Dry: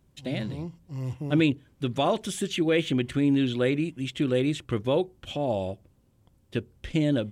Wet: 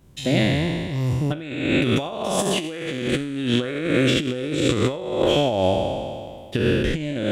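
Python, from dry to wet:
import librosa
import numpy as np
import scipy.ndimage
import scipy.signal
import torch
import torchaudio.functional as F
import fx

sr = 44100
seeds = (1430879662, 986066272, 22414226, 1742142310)

y = fx.spec_trails(x, sr, decay_s=2.12)
y = fx.over_compress(y, sr, threshold_db=-26.0, ratio=-0.5)
y = F.gain(torch.from_numpy(y), 5.0).numpy()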